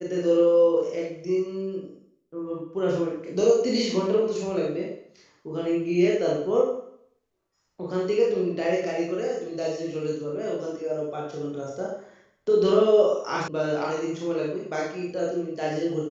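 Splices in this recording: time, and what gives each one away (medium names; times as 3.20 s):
13.48 s: sound stops dead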